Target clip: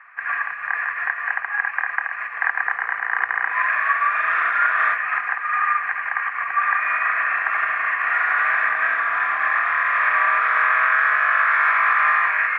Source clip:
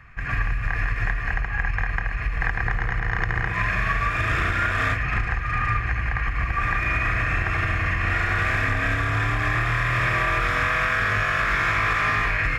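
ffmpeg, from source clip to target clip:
-af "asuperpass=centerf=1300:order=4:qfactor=1.1,volume=6.5dB"

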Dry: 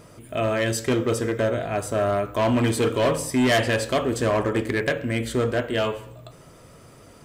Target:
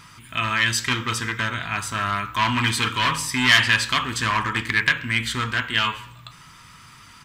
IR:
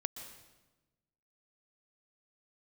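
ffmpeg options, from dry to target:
-af "firequalizer=gain_entry='entry(190,0);entry(410,-14);entry(590,-18);entry(940,8);entry(2000,11);entry(3500,12);entry(9000,3)':delay=0.05:min_phase=1,volume=-1.5dB"

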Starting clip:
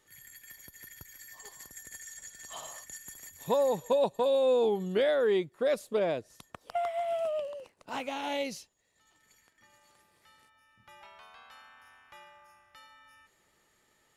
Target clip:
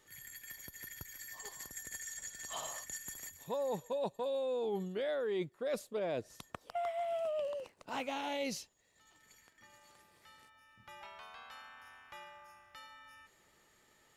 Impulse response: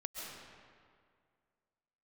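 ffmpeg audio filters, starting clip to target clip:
-af "equalizer=f=10k:w=4.7:g=-4,areverse,acompressor=threshold=-36dB:ratio=6,areverse,volume=1.5dB"

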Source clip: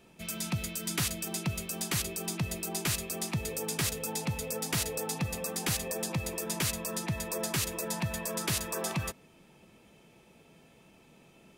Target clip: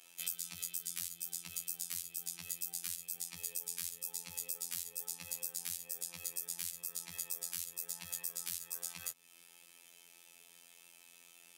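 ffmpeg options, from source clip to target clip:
-filter_complex "[0:a]aderivative,afftfilt=real='hypot(re,im)*cos(PI*b)':imag='0':win_size=2048:overlap=0.75,acrossover=split=170[a][b];[b]acompressor=threshold=-48dB:ratio=10[c];[a][c]amix=inputs=2:normalize=0,volume=13dB"

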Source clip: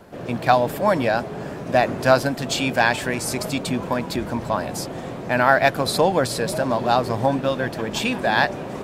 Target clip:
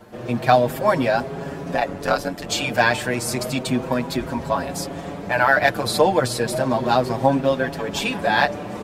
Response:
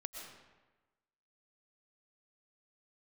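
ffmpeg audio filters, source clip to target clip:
-filter_complex "[0:a]asplit=3[a][b][c];[a]afade=t=out:st=1.73:d=0.02[d];[b]tremolo=f=93:d=0.919,afade=t=in:st=1.73:d=0.02,afade=t=out:st=2.48:d=0.02[e];[c]afade=t=in:st=2.48:d=0.02[f];[d][e][f]amix=inputs=3:normalize=0,asplit=2[g][h];[h]adelay=6.2,afreqshift=0.33[i];[g][i]amix=inputs=2:normalize=1,volume=3.5dB"

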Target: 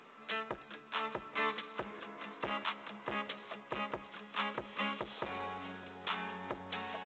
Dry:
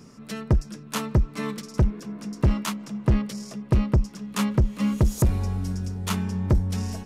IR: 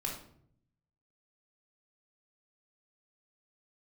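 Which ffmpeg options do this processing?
-filter_complex "[0:a]highpass=730,alimiter=level_in=1dB:limit=-24dB:level=0:latency=1:release=103,volume=-1dB,aecho=1:1:825|1650|2475:0.119|0.0464|0.0181,asplit=2[a][b];[1:a]atrim=start_sample=2205[c];[b][c]afir=irnorm=-1:irlink=0,volume=-16.5dB[d];[a][d]amix=inputs=2:normalize=0,aresample=8000,aresample=44100,volume=2.5dB" -ar 16000 -c:a pcm_mulaw

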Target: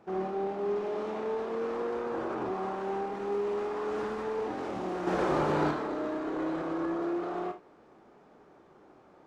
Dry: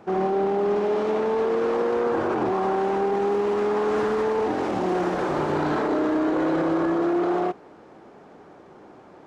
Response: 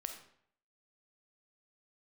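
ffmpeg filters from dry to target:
-filter_complex "[0:a]asettb=1/sr,asplit=3[a][b][c];[a]atrim=end=5.074[d];[b]atrim=start=5.07:end=5.71,asetpts=PTS-STARTPTS,afade=t=in:d=0.004:c=qsin,afade=t=out:st=0.636:d=0.004:c=qsin,acontrast=80[e];[c]atrim=start=5.706[f];[d][e]acrossfade=d=0.004:c1=hsin:c2=qsin[g];[g][f]acrossfade=d=0.004:c1=qsin:c2=hsin[h];[1:a]atrim=start_sample=2205,afade=t=out:st=0.22:d=0.01,atrim=end_sample=10143,asetrate=83790,aresample=44100[i];[h][i]afir=irnorm=-1:irlink=0,volume=-2dB"

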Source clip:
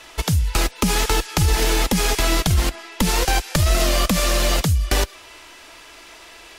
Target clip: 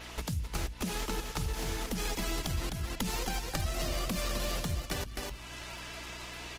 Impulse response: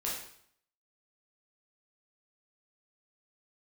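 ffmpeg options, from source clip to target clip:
-filter_complex "[0:a]aecho=1:1:258:0.473,asettb=1/sr,asplit=3[a][b][c];[a]atrim=end=1.244[d];[b]atrim=start=1.24:end=3.46,asetpts=PTS-STARTPTS,afade=t=in:d=0.004:c=qsin,afade=t=out:st=2.216:d=0.004:c=qsin,acrossover=split=320|3000[e][f][g];[f]acompressor=threshold=-20dB:ratio=6[h];[e][h][g]amix=inputs=3:normalize=0[i];[c]atrim=start=3.456[j];[d][i]acrossfade=d=0.004:c1=hsin:c2=qsin[k];[k][j]acrossfade=d=0.004:c1=qsin:c2=hsin,equalizer=f=230:w=3.6:g=3.5,acompressor=threshold=-36dB:ratio=2.5,bandreject=f=50:t=h:w=6,bandreject=f=100:t=h:w=6,bandreject=f=150:t=h:w=6,bandreject=f=200:t=h:w=6,aeval=exprs='val(0)+0.00447*(sin(2*PI*60*n/s)+sin(2*PI*2*60*n/s)/2+sin(2*PI*3*60*n/s)/3+sin(2*PI*4*60*n/s)/4+sin(2*PI*5*60*n/s)/5)':c=same,adynamicequalizer=threshold=0.00112:dfrequency=8500:dqfactor=6:tfrequency=8500:tqfactor=6:attack=5:release=100:ratio=0.375:range=1.5:mode=cutabove:tftype=bell,volume=-1.5dB" -ar 48000 -c:a libopus -b:a 16k

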